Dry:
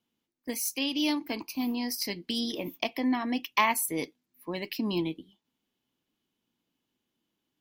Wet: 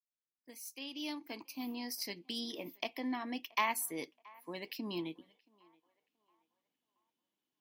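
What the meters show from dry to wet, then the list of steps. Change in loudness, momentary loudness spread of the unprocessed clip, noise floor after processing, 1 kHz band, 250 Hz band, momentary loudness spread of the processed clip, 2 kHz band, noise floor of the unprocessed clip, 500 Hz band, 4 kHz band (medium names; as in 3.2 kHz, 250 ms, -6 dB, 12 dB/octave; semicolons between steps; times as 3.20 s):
-9.5 dB, 11 LU, under -85 dBFS, -8.0 dB, -11.0 dB, 14 LU, -8.0 dB, -84 dBFS, -9.0 dB, -9.0 dB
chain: fade-in on the opening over 1.71 s; high-pass 250 Hz 6 dB/octave; on a send: band-passed feedback delay 676 ms, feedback 45%, band-pass 1 kHz, level -23 dB; on the sum: trim -7.5 dB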